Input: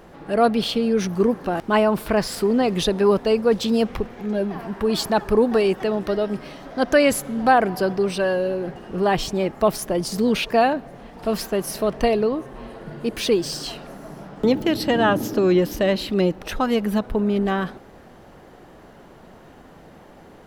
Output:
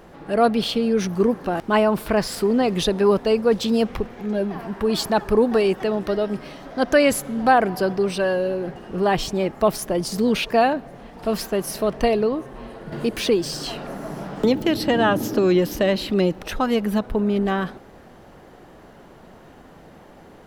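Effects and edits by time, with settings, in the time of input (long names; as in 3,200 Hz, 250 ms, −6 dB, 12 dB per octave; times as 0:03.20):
0:12.92–0:16.43: multiband upward and downward compressor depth 40%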